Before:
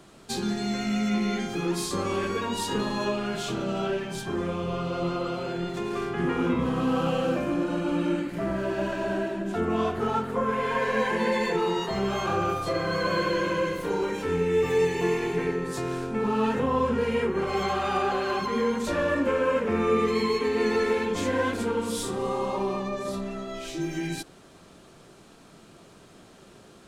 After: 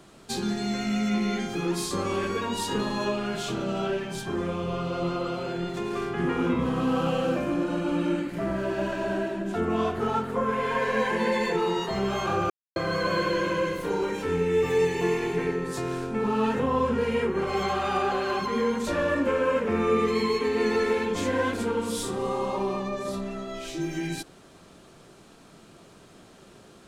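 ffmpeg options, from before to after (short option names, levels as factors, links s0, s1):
-filter_complex "[0:a]asplit=3[s0][s1][s2];[s0]atrim=end=12.5,asetpts=PTS-STARTPTS,afade=t=out:st=12.496:d=0.004:c=hsin[s3];[s1]atrim=start=12.5:end=12.76,asetpts=PTS-STARTPTS,volume=0[s4];[s2]atrim=start=12.76,asetpts=PTS-STARTPTS,afade=t=in:d=0.004:c=hsin[s5];[s3][s4][s5]concat=n=3:v=0:a=1"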